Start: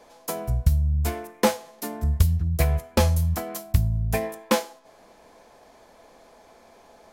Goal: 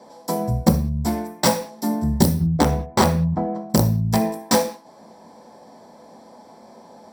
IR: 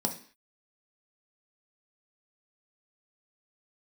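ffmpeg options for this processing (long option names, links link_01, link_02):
-filter_complex "[0:a]asettb=1/sr,asplit=3[link_01][link_02][link_03];[link_01]atrim=end=2.314[link_04];[link_02]atrim=start=2.31:end=3.7,asetpts=PTS-STARTPTS,afade=type=in:duration=0.004:curve=qsin,afade=type=out:start_time=1.386:duration=0.004:curve=qsin,lowpass=1300[link_05];[link_03]atrim=start=3.696[link_06];[link_04][link_05]acrossfade=duration=0.004:curve1=hsin:curve2=qsin[link_07];[link_07][link_06]acrossfade=duration=0.004:curve1=qsin:curve2=hsin,aeval=exprs='(mod(4.73*val(0)+1,2)-1)/4.73':channel_layout=same[link_08];[1:a]atrim=start_sample=2205,afade=type=out:start_time=0.26:duration=0.01,atrim=end_sample=11907[link_09];[link_08][link_09]afir=irnorm=-1:irlink=0,volume=-2.5dB"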